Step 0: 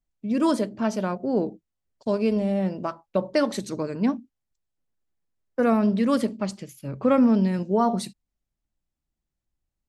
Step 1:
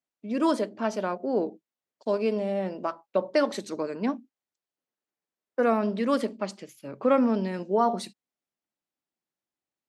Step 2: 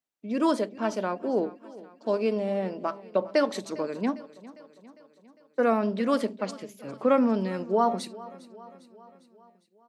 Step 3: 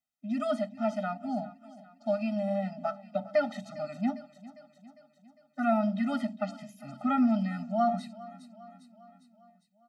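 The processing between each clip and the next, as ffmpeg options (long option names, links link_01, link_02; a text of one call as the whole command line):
ffmpeg -i in.wav -af "highpass=310,highshelf=frequency=7100:gain=-9" out.wav
ffmpeg -i in.wav -af "aecho=1:1:403|806|1209|1612|2015:0.112|0.064|0.0365|0.0208|0.0118" out.wav
ffmpeg -i in.wav -filter_complex "[0:a]acrossover=split=3300[link_01][link_02];[link_02]acompressor=threshold=-51dB:ratio=4:attack=1:release=60[link_03];[link_01][link_03]amix=inputs=2:normalize=0,afftfilt=real='re*eq(mod(floor(b*sr/1024/300),2),0)':imag='im*eq(mod(floor(b*sr/1024/300),2),0)':win_size=1024:overlap=0.75" out.wav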